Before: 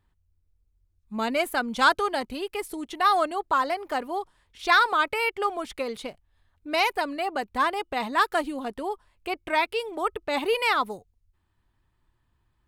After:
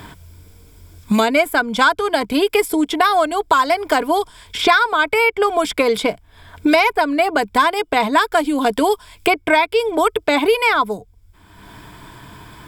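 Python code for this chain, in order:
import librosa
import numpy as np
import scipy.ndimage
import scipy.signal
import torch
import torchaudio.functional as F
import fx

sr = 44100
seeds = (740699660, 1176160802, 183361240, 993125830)

p1 = fx.rider(x, sr, range_db=10, speed_s=0.5)
p2 = x + (p1 * 10.0 ** (2.0 / 20.0))
p3 = fx.ripple_eq(p2, sr, per_octave=1.7, db=8)
p4 = fx.band_squash(p3, sr, depth_pct=100)
y = p4 * 10.0 ** (1.0 / 20.0)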